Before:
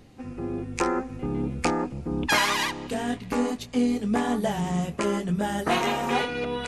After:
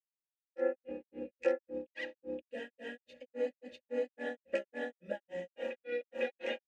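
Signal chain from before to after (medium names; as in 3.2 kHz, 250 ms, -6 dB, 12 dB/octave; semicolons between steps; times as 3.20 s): vowel filter e; granulator 203 ms, grains 3.6 per s, spray 709 ms, pitch spread up and down by 0 st; comb 3.6 ms, depth 85%; trim +2 dB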